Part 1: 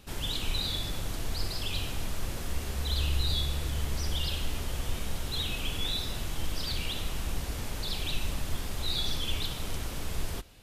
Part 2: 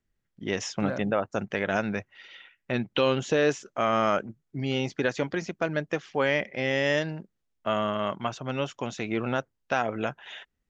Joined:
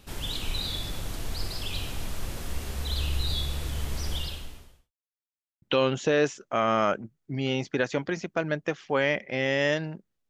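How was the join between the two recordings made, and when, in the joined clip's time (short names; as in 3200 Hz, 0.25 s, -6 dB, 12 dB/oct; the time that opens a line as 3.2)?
part 1
4.16–4.92 fade out quadratic
4.92–5.62 mute
5.62 switch to part 2 from 2.87 s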